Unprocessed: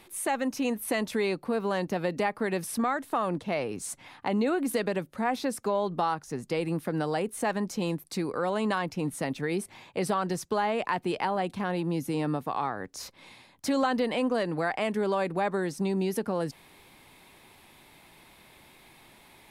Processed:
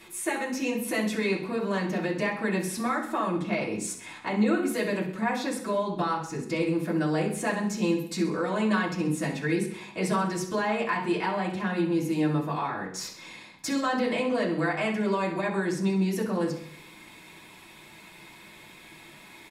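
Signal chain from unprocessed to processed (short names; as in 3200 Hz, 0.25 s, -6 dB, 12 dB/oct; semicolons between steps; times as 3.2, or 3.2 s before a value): in parallel at -0.5 dB: compressor, threshold -40 dBFS, peak gain reduction 17 dB; on the sum: feedback echo 65 ms, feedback 52%, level -13 dB; reverb RT60 0.50 s, pre-delay 3 ms, DRR -6 dB; gain -7 dB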